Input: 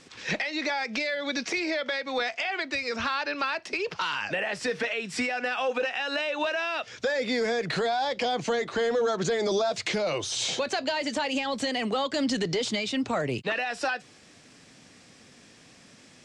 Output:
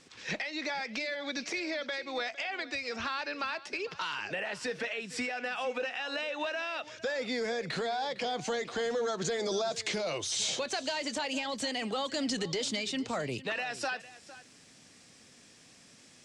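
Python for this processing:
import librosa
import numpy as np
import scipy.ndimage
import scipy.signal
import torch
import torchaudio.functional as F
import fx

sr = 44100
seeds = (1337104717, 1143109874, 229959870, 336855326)

y = fx.high_shelf(x, sr, hz=4700.0, db=fx.steps((0.0, 3.0), (8.34, 8.5)))
y = y + 10.0 ** (-17.0 / 20.0) * np.pad(y, (int(456 * sr / 1000.0), 0))[:len(y)]
y = F.gain(torch.from_numpy(y), -6.5).numpy()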